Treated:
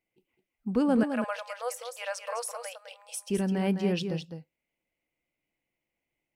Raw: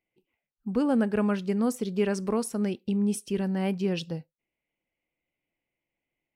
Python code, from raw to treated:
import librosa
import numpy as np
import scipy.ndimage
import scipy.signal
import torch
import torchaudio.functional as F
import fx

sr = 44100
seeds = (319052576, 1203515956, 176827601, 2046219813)

y = fx.brickwall_highpass(x, sr, low_hz=470.0, at=(1.03, 3.3))
y = y + 10.0 ** (-7.5 / 20.0) * np.pad(y, (int(209 * sr / 1000.0), 0))[:len(y)]